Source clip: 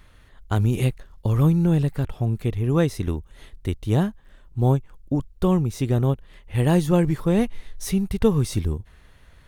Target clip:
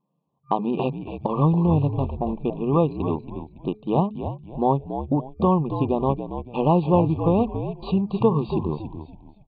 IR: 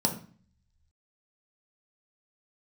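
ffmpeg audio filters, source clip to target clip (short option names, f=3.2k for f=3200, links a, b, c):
-filter_complex "[0:a]anlmdn=6.31,afftfilt=real='re*between(b*sr/4096,130,4700)':imag='im*between(b*sr/4096,130,4700)':win_size=4096:overlap=0.75,bandreject=f=212.7:t=h:w=4,bandreject=f=425.4:t=h:w=4,afftfilt=real='re*(1-between(b*sr/4096,1200,2400))':imag='im*(1-between(b*sr/4096,1200,2400))':win_size=4096:overlap=0.75,acrossover=split=2600[a][b];[b]acompressor=threshold=-54dB:ratio=4:attack=1:release=60[c];[a][c]amix=inputs=2:normalize=0,equalizer=f=930:t=o:w=1.2:g=11,acompressor=threshold=-42dB:ratio=1.5,asplit=5[d][e][f][g][h];[e]adelay=280,afreqshift=-63,volume=-9dB[i];[f]adelay=560,afreqshift=-126,volume=-18.9dB[j];[g]adelay=840,afreqshift=-189,volume=-28.8dB[k];[h]adelay=1120,afreqshift=-252,volume=-38.7dB[l];[d][i][j][k][l]amix=inputs=5:normalize=0,volume=8.5dB"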